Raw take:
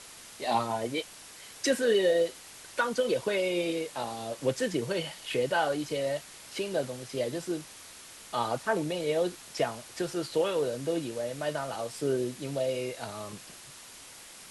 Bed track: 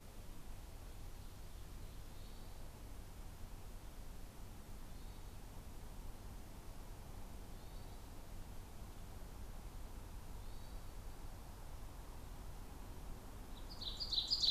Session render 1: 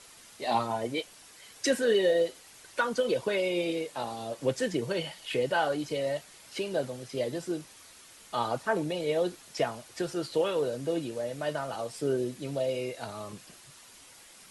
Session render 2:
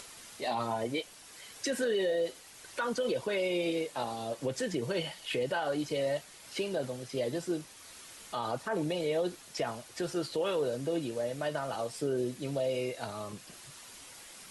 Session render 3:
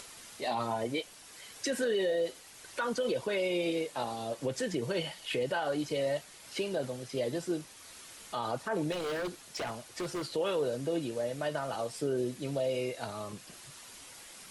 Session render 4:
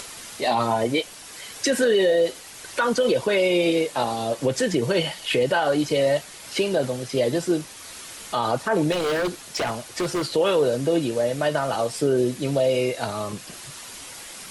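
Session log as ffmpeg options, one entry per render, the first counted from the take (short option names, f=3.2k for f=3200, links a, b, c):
-af "afftdn=nr=6:nf=-49"
-af "acompressor=mode=upward:threshold=-44dB:ratio=2.5,alimiter=limit=-23dB:level=0:latency=1:release=64"
-filter_complex "[0:a]asettb=1/sr,asplit=3[a][b][c];[a]atrim=end=8.924[d];[b]atrim=start=8.92:end=10.26,asetpts=PTS-STARTPTS,afade=t=in:d=0.004:c=qsin,afade=t=out:st=1.336:d=0.004:c=qsin,aeval=exprs='0.0335*(abs(mod(val(0)/0.0335+3,4)-2)-1)':c=same[e];[c]atrim=start=10.256[f];[d][e]acrossfade=d=0.004:c1=hsin:c2=qsin[g];[g][f]acrossfade=d=0.004:c1=qsin:c2=hsin"
-af "volume=11dB"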